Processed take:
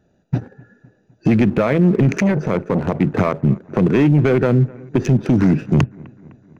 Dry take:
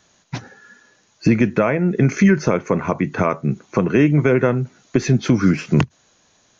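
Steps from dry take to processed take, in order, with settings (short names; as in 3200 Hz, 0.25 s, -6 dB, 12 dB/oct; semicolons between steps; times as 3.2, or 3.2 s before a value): Wiener smoothing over 41 samples; sample leveller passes 1; limiter -14.5 dBFS, peak gain reduction 10 dB; analogue delay 0.254 s, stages 4096, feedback 58%, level -23.5 dB; 2.18–3.01 core saturation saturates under 320 Hz; gain +7 dB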